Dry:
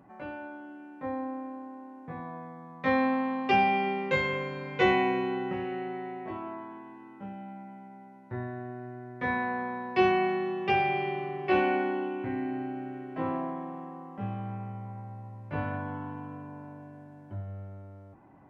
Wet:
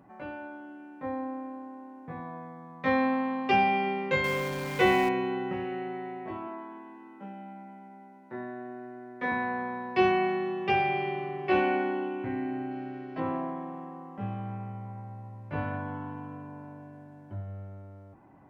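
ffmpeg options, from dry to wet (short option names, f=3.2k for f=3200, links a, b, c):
-filter_complex "[0:a]asettb=1/sr,asplit=3[a][b][c];[a]atrim=end=4.244[d];[b]atrim=start=4.24:end=5.09,asetpts=PTS-STARTPTS,afade=t=in:d=0.004:c=qsin,afade=t=out:st=0.846:d=0.004:c=qsin,aeval=exprs='val(0)+0.5*0.0178*sgn(val(0))':c=same[e];[c]atrim=start=5.086[f];[d][e]acrossfade=d=0.004:c1=hsin:c2=qsin[g];[g][f]acrossfade=d=0.004:c1=qsin:c2=hsin,asettb=1/sr,asplit=3[h][i][j];[h]atrim=end=6.484[k];[i]atrim=start=6.48:end=9.32,asetpts=PTS-STARTPTS,afade=t=in:d=0.004:c=qsin,afade=t=out:st=2.836:d=0.004:c=qsin,highpass=f=190:w=0.5412,highpass=f=190:w=1.3066[l];[j]atrim=start=9.316[m];[k][l]acrossfade=d=0.004:c1=hsin:c2=qsin[n];[n][m]acrossfade=d=0.004:c1=qsin:c2=hsin,asettb=1/sr,asplit=3[o][p][q];[o]atrim=end=12.714[r];[p]atrim=start=12.71:end=13.2,asetpts=PTS-STARTPTS,afade=t=in:d=0.004:c=qsin,afade=t=out:st=0.486:d=0.004:c=qsin,lowpass=f=4.8k:t=q:w=3[s];[q]atrim=start=13.196[t];[r][s]acrossfade=d=0.004:c1=hsin:c2=qsin[u];[u][t]acrossfade=d=0.004:c1=qsin:c2=hsin"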